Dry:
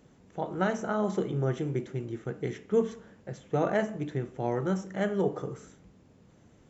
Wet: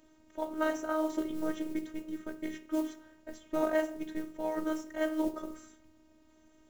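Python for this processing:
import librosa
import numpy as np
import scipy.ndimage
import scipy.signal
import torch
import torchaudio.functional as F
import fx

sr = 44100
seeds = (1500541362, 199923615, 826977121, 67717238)

y = fx.hum_notches(x, sr, base_hz=60, count=6)
y = fx.mod_noise(y, sr, seeds[0], snr_db=27)
y = fx.robotise(y, sr, hz=312.0)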